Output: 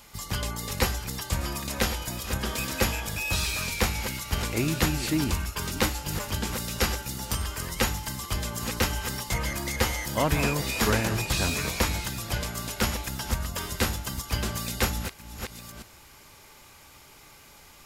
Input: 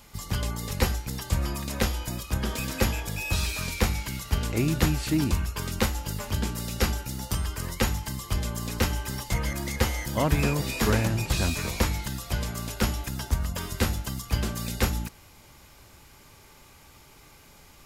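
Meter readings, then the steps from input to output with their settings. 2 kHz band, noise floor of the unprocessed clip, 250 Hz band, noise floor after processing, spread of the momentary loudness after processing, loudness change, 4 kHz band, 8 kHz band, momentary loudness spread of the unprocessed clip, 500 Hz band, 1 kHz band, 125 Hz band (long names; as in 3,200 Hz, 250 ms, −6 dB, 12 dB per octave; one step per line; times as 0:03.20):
+2.5 dB, −53 dBFS, −1.5 dB, −52 dBFS, 7 LU, 0.0 dB, +3.0 dB, +3.0 dB, 7 LU, +0.5 dB, +2.0 dB, −3.0 dB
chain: delay that plays each chunk backwards 688 ms, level −11 dB
low-shelf EQ 410 Hz −6 dB
level +2.5 dB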